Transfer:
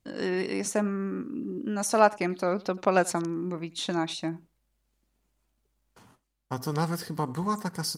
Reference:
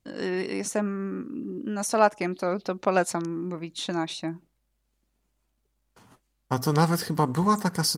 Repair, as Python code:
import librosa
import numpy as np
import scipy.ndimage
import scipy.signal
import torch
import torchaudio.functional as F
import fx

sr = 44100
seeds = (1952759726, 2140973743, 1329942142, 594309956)

y = fx.fix_echo_inverse(x, sr, delay_ms=86, level_db=-23.0)
y = fx.gain(y, sr, db=fx.steps((0.0, 0.0), (6.11, 6.5)))